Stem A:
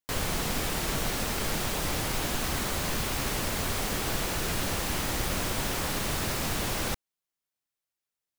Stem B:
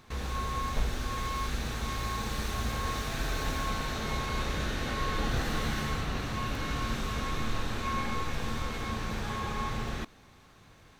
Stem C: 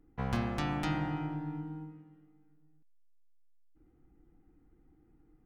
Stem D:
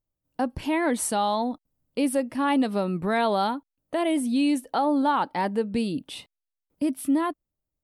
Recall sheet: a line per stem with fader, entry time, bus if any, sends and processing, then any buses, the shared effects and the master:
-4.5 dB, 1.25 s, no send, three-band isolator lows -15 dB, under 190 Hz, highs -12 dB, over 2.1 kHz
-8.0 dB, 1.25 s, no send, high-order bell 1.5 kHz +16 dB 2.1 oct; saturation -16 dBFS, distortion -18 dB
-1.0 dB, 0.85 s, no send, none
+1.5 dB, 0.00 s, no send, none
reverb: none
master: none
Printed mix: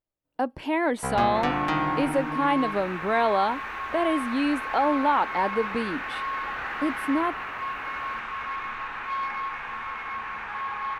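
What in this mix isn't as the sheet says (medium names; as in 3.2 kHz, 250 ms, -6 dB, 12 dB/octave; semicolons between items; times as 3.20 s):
stem A -4.5 dB -> -11.5 dB; stem C -1.0 dB -> +10.0 dB; master: extra tone controls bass -11 dB, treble -12 dB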